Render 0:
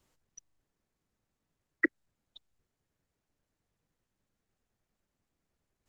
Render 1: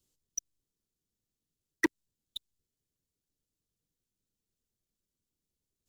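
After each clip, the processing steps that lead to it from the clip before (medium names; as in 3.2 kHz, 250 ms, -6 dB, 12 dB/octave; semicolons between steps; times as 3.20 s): high-order bell 1.2 kHz -10.5 dB 2.3 oct; waveshaping leveller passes 3; treble shelf 3.9 kHz +8.5 dB; trim -1 dB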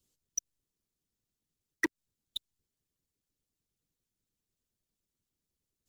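harmonic-percussive split percussive +8 dB; compression 6:1, threshold -22 dBFS, peak gain reduction 8 dB; trim -5 dB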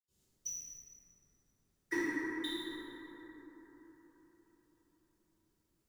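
peak limiter -27.5 dBFS, peak gain reduction 9 dB; reverberation RT60 4.6 s, pre-delay 76 ms; trim +9.5 dB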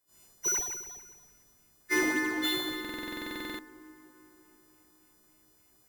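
partials quantised in pitch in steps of 3 st; in parallel at -10.5 dB: decimation with a swept rate 12×, swing 100% 3.5 Hz; on the sum: buffer glitch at 2.80 s, samples 2048, times 16; trim +5.5 dB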